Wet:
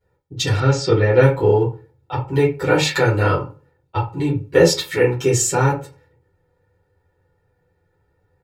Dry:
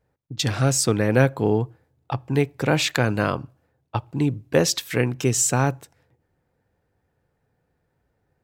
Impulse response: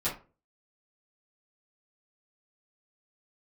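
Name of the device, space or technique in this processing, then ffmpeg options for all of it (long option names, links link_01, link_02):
microphone above a desk: -filter_complex "[0:a]aecho=1:1:2.2:0.73[link_01];[1:a]atrim=start_sample=2205[link_02];[link_01][link_02]afir=irnorm=-1:irlink=0,asettb=1/sr,asplit=3[link_03][link_04][link_05];[link_03]atrim=end=0.604[link_06];[link_04]atrim=start=0.6:end=1.23,asetpts=PTS-STARTPTS,afade=type=in:duration=0.004:curve=qsin,afade=type=out:start_time=0.626:duration=0.004:curve=qsin,lowpass=frequency=5300:width=0.5412,lowpass=frequency=5300:width=1.3066[link_07];[link_05]atrim=start=1.226[link_08];[link_06][link_07]acrossfade=duration=0.004:curve1=hsin:curve2=qsin[link_09];[link_09][link_08]acrossfade=duration=0.004:curve1=qsin:curve2=hsin,volume=-4.5dB"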